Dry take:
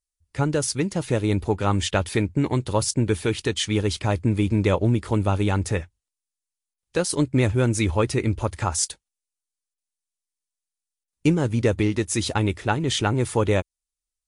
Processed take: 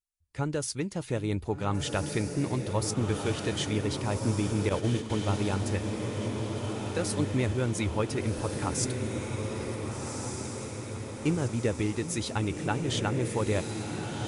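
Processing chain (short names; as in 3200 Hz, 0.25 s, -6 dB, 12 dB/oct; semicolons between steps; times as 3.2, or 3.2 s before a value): diffused feedback echo 1.516 s, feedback 60%, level -4.5 dB; 4.69–5.1 gate -21 dBFS, range -9 dB; delay with a stepping band-pass 0.764 s, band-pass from 200 Hz, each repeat 1.4 oct, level -10.5 dB; gain -8 dB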